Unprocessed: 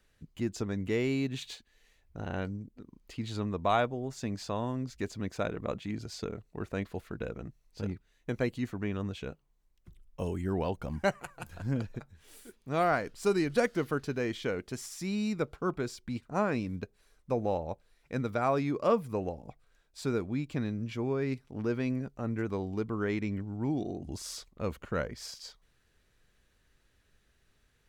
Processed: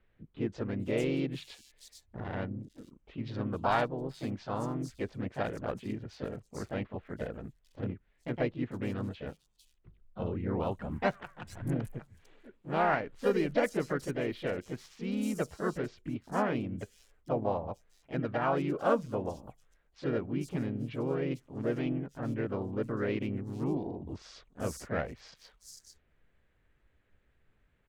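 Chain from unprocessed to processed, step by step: Wiener smoothing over 9 samples; harmoniser +3 st -5 dB, +4 st -15 dB, +5 st -8 dB; bands offset in time lows, highs 0.45 s, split 4900 Hz; gain -2.5 dB

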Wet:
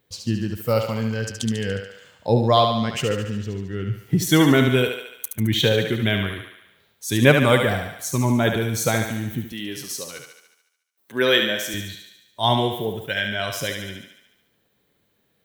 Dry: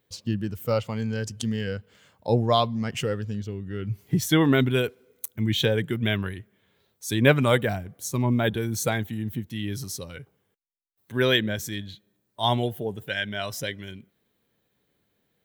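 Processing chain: 9.52–11.74 HPF 270 Hz 12 dB/oct; thinning echo 72 ms, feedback 62%, high-pass 410 Hz, level -5 dB; gain +3.5 dB

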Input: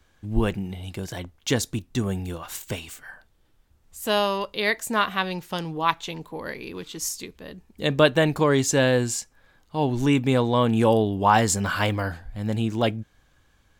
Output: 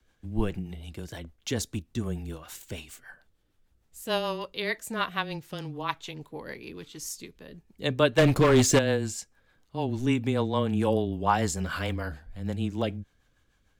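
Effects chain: frequency shift -13 Hz; 8.18–8.79 sample leveller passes 3; rotary speaker horn 6.7 Hz; gain -4 dB

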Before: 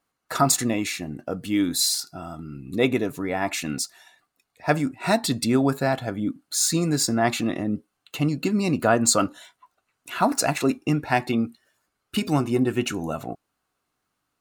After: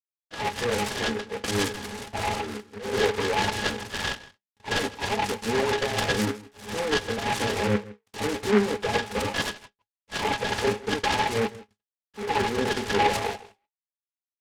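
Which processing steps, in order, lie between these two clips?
HPF 520 Hz 24 dB/oct; gate with hold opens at -48 dBFS; comb 5.9 ms, depth 40%; reverse; compressor 12:1, threshold -33 dBFS, peak gain reduction 19.5 dB; reverse; fuzz box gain 51 dB, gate -57 dBFS; auto swell 0.168 s; flange 0.42 Hz, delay 1.8 ms, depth 7.9 ms, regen +80%; octave resonator G#, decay 0.11 s; on a send: echo 0.16 s -19 dB; on the sum: downsampling 8000 Hz; noise-modulated delay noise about 1400 Hz, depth 0.11 ms; gain +9 dB

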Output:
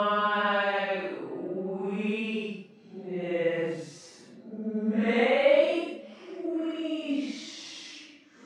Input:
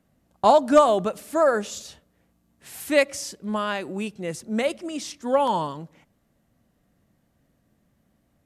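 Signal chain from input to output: Paulstretch 5.3×, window 0.10 s, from 3.62; BPF 220–3000 Hz; gain +1 dB

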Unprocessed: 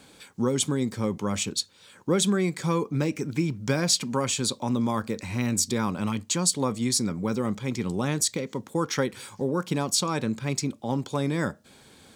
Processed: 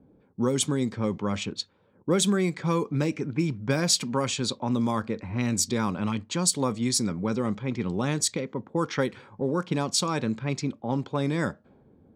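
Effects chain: low-pass opened by the level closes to 370 Hz, open at -20 dBFS

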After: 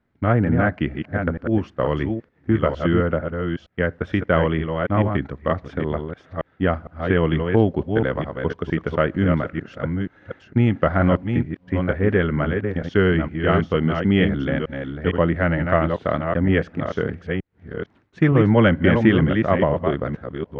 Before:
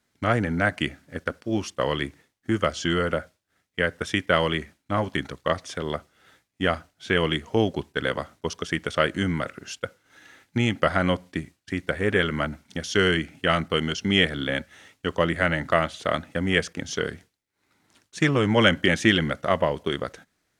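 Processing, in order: reverse delay 0.458 s, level -5.5 dB; LPF 2100 Hz 12 dB/oct; tilt -2 dB/oct; gain +1.5 dB

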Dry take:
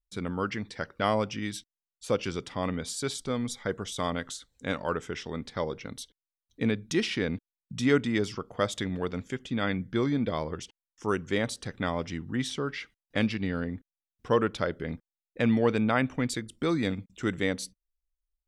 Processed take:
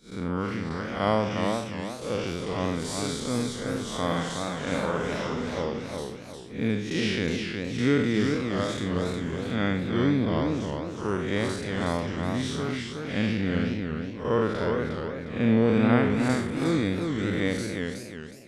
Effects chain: time blur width 0.167 s; 4.05–5.62 flutter echo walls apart 9.1 m, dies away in 0.8 s; warbling echo 0.363 s, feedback 37%, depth 171 cents, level -4.5 dB; gain +5 dB

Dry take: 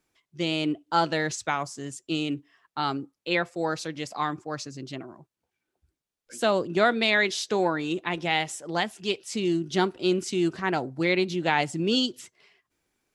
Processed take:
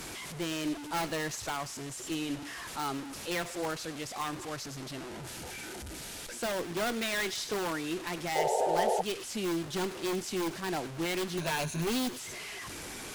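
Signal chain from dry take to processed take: delta modulation 64 kbps, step -30.5 dBFS; 11.37–12.09 ripple EQ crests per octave 1.5, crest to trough 15 dB; tube stage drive 16 dB, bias 0.55; in parallel at -3 dB: wrapped overs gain 23 dB; 5.08–6.38 on the sum: Butterworth band-stop 1100 Hz, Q 7.4; on a send: thin delay 0.102 s, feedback 50%, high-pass 1700 Hz, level -15 dB; 8.35–9.02 on the sum: painted sound noise 370–920 Hz -21 dBFS; gain -7.5 dB

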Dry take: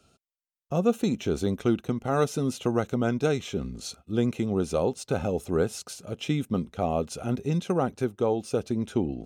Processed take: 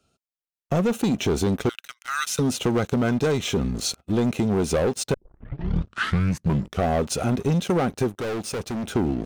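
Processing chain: 1.69–2.39 steep high-pass 1400 Hz 36 dB/oct; sample leveller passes 3; compressor 3:1, threshold -20 dBFS, peak gain reduction 5 dB; 5.14 tape start 1.74 s; 8.18–8.93 hard clip -26 dBFS, distortion -15 dB

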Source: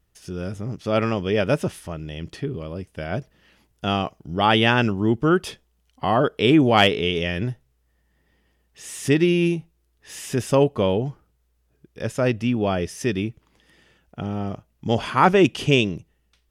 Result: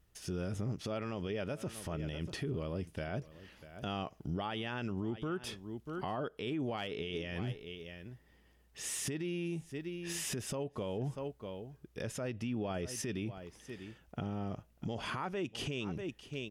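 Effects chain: on a send: echo 0.64 s -22 dB; on the sum: compressor 12:1, threshold -28 dBFS, peak gain reduction 18.5 dB; limiter -27.5 dBFS, peak gain reduction 9.5 dB; gain -1.5 dB

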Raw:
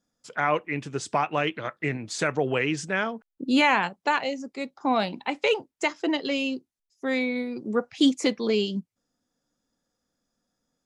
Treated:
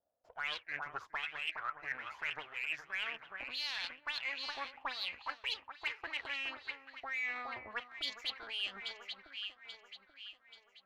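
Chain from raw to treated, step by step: downsampling 16000 Hz; half-wave rectifier; auto-wah 630–4200 Hz, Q 7.1, up, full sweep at -20 dBFS; echo with dull and thin repeats by turns 0.417 s, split 1400 Hz, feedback 63%, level -10 dB; in parallel at -8.5 dB: soft clip -37 dBFS, distortion -9 dB; on the sum: resonant low shelf 130 Hz +13 dB, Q 1.5; reverse; compressor 6:1, threshold -45 dBFS, peak gain reduction 14 dB; reverse; gain +9 dB

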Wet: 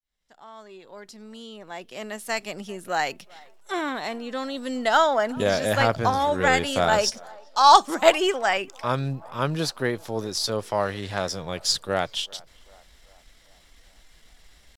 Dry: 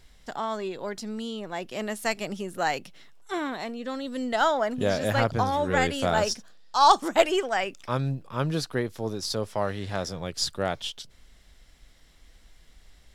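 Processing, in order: opening faded in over 3.63 s; low shelf 420 Hz -6 dB; tempo 0.89×; narrowing echo 0.389 s, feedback 61%, band-pass 800 Hz, level -23.5 dB; gain +5 dB

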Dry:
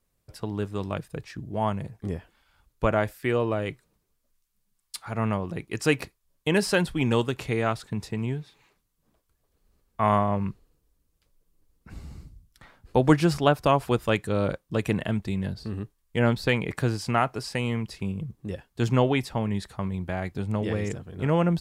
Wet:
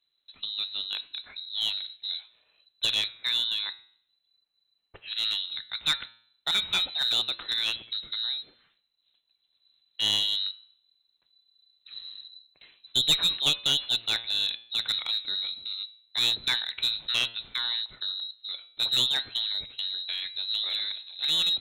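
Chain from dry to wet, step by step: inverted band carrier 4000 Hz; one-sided clip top -17.5 dBFS; de-hum 114.9 Hz, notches 37; gain -3 dB

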